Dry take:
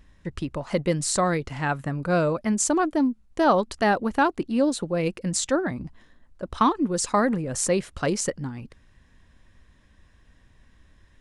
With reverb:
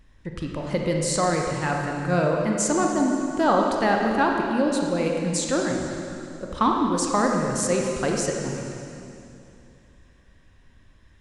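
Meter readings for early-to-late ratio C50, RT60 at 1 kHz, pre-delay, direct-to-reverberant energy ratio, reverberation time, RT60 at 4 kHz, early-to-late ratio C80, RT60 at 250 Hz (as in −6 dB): 1.0 dB, 2.6 s, 25 ms, 0.0 dB, 2.7 s, 2.6 s, 2.5 dB, 2.8 s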